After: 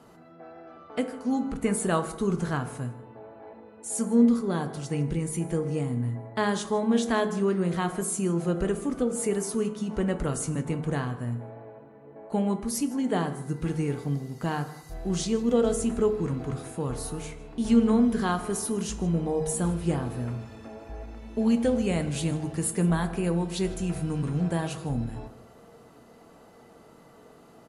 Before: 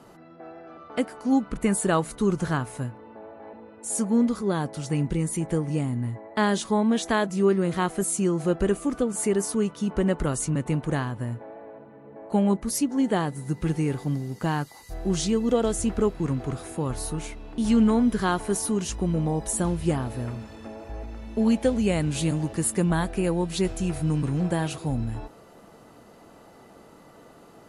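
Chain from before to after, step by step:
single-tap delay 156 ms −20.5 dB
on a send at −7 dB: convolution reverb RT60 0.80 s, pre-delay 3 ms
on the sum: level −3.5 dB

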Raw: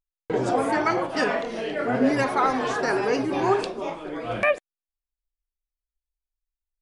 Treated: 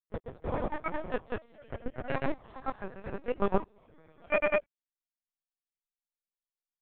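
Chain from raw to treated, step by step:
noise gate −20 dBFS, range −26 dB
dynamic equaliser 1,800 Hz, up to −4 dB, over −41 dBFS, Q 2
in parallel at −0.5 dB: downward compressor, threshold −31 dBFS, peak gain reduction 14 dB
on the sum: granular cloud, grains 20 per second, spray 214 ms
linear-prediction vocoder at 8 kHz pitch kept
level −4 dB

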